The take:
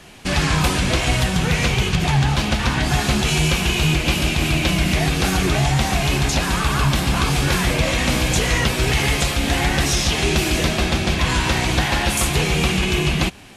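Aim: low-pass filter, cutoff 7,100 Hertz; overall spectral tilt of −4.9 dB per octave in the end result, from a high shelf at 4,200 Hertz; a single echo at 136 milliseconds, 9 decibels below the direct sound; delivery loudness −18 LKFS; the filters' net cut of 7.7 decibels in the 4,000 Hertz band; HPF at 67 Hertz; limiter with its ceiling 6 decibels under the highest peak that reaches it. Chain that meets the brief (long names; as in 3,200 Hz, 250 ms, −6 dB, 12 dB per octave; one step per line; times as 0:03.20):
high-pass filter 67 Hz
low-pass filter 7,100 Hz
parametric band 4,000 Hz −6.5 dB
high-shelf EQ 4,200 Hz −7 dB
brickwall limiter −13 dBFS
single-tap delay 136 ms −9 dB
level +4 dB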